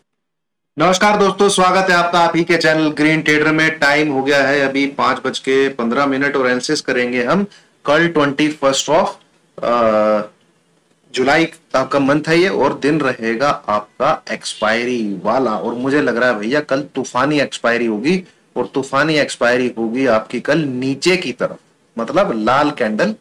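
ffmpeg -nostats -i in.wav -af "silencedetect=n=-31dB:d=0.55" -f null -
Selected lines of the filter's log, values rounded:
silence_start: 0.00
silence_end: 0.77 | silence_duration: 0.77
silence_start: 10.27
silence_end: 11.14 | silence_duration: 0.86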